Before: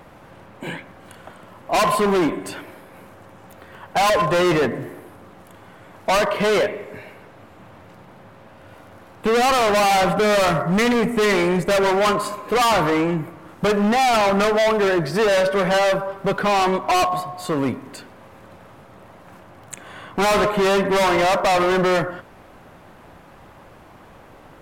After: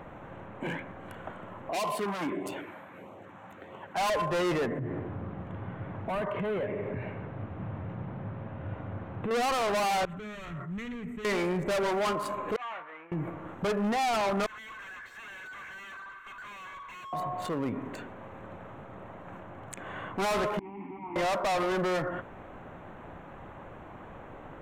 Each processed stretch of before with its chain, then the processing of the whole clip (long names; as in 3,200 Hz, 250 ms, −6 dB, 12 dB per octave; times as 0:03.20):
0:01.71–0:03.97: high-pass filter 250 Hz 6 dB per octave + auto-filter notch sine 1.6 Hz 360–1,700 Hz
0:04.79–0:09.31: low-pass filter 4,200 Hz + parametric band 110 Hz +13 dB 2.1 octaves + downward compressor 5 to 1, threshold −29 dBFS
0:10.05–0:11.25: guitar amp tone stack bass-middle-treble 6-0-2 + level that may fall only so fast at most 28 dB per second
0:12.56–0:13.12: downward expander −8 dBFS + resonant band-pass 1,900 Hz, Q 1.1 + double-tracking delay 24 ms −12 dB
0:14.46–0:17.13: Butterworth high-pass 1,200 Hz 48 dB per octave + comb filter 1.9 ms, depth 93% + tube saturation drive 41 dB, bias 0.25
0:20.59–0:21.16: linear delta modulator 16 kbit/s, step −32 dBFS + formant filter u + parametric band 400 Hz −10 dB 1.4 octaves
whole clip: adaptive Wiener filter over 9 samples; downward compressor, threshold −21 dBFS; brickwall limiter −25.5 dBFS